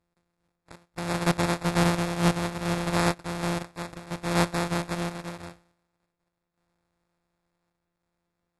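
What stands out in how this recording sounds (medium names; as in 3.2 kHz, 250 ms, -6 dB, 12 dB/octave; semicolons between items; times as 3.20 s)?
a buzz of ramps at a fixed pitch in blocks of 256 samples; random-step tremolo; aliases and images of a low sample rate 3 kHz, jitter 0%; AAC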